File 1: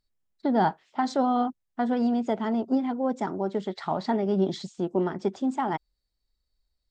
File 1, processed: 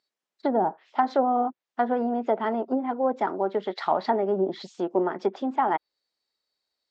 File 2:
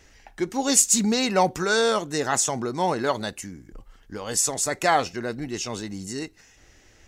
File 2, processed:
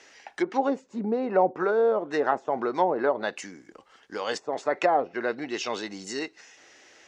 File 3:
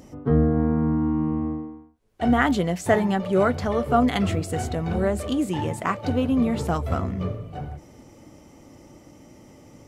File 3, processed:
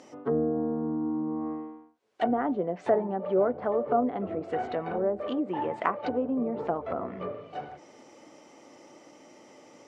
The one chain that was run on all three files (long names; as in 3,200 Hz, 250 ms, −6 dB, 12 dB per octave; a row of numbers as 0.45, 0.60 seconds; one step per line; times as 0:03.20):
treble cut that deepens with the level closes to 570 Hz, closed at −19 dBFS
band-pass filter 410–6,400 Hz
normalise the peak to −9 dBFS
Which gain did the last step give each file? +5.5, +4.5, +1.0 decibels